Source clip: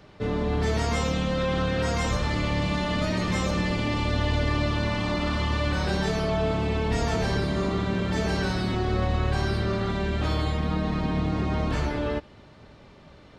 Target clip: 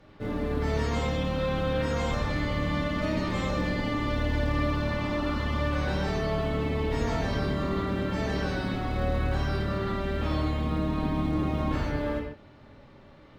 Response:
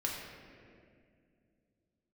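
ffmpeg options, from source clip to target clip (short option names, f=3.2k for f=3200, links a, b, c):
-filter_complex "[0:a]acrusher=bits=7:mode=log:mix=0:aa=0.000001,aemphasis=mode=reproduction:type=cd[a];[1:a]atrim=start_sample=2205,afade=t=out:st=0.2:d=0.01,atrim=end_sample=9261,asetrate=41454,aresample=44100[b];[a][b]afir=irnorm=-1:irlink=0,volume=-5dB"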